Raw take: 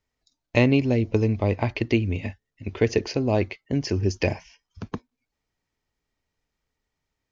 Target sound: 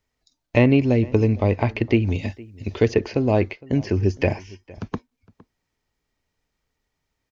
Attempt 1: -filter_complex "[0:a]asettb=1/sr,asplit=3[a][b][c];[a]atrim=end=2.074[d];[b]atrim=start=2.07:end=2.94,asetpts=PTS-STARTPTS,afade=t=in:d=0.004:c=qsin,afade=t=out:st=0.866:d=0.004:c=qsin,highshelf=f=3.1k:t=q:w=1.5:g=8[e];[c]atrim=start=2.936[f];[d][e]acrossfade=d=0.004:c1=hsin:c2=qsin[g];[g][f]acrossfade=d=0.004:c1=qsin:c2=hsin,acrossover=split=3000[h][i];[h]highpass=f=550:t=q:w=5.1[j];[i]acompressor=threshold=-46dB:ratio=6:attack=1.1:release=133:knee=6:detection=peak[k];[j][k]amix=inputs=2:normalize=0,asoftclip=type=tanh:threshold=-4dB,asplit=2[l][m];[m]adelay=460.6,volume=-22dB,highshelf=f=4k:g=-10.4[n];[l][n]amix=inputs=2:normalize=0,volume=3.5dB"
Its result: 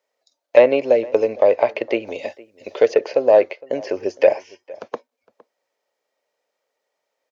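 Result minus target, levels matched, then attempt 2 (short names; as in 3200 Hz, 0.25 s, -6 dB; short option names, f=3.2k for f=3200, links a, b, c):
500 Hz band +4.5 dB
-filter_complex "[0:a]asettb=1/sr,asplit=3[a][b][c];[a]atrim=end=2.074[d];[b]atrim=start=2.07:end=2.94,asetpts=PTS-STARTPTS,afade=t=in:d=0.004:c=qsin,afade=t=out:st=0.866:d=0.004:c=qsin,highshelf=f=3.1k:t=q:w=1.5:g=8[e];[c]atrim=start=2.936[f];[d][e]acrossfade=d=0.004:c1=hsin:c2=qsin[g];[g][f]acrossfade=d=0.004:c1=qsin:c2=hsin,acrossover=split=3000[h][i];[i]acompressor=threshold=-46dB:ratio=6:attack=1.1:release=133:knee=6:detection=peak[j];[h][j]amix=inputs=2:normalize=0,asoftclip=type=tanh:threshold=-4dB,asplit=2[k][l];[l]adelay=460.6,volume=-22dB,highshelf=f=4k:g=-10.4[m];[k][m]amix=inputs=2:normalize=0,volume=3.5dB"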